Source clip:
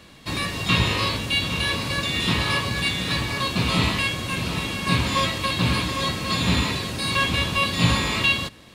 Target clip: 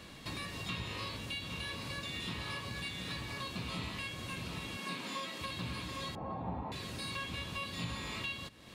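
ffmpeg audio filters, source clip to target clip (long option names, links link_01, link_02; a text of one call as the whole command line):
ffmpeg -i in.wav -filter_complex "[0:a]asettb=1/sr,asplit=3[link_01][link_02][link_03];[link_01]atrim=end=4.774[link_04];[link_02]atrim=start=4.77:end=5.41,asetpts=PTS-STARTPTS,afade=type=in:duration=0.004:curve=qsin,afade=type=out:start_time=0.636:duration=0.004:curve=qsin,highpass=frequency=190:width=0.5412,highpass=frequency=190:width=1.3066[link_05];[link_03]atrim=start=5.406[link_06];[link_04][link_05]acrossfade=duration=0.004:curve1=hsin:curve2=qsin[link_07];[link_07][link_06]acrossfade=duration=0.004:curve1=qsin:curve2=hsin,acompressor=threshold=-40dB:ratio=3,asettb=1/sr,asplit=3[link_08][link_09][link_10];[link_08]atrim=end=6.154[link_11];[link_09]atrim=start=6.15:end=6.72,asetpts=PTS-STARTPTS,afade=type=in:duration=0.004:curve=qsin,afade=type=out:start_time=0.566:duration=0.004:curve=qsin,lowpass=frequency=800:width_type=q:width=6.5[link_12];[link_10]atrim=start=6.716[link_13];[link_11][link_12]acrossfade=duration=0.004:curve1=hsin:curve2=qsin[link_14];[link_14][link_13]acrossfade=duration=0.004:curve1=qsin:curve2=hsin,volume=-3dB" out.wav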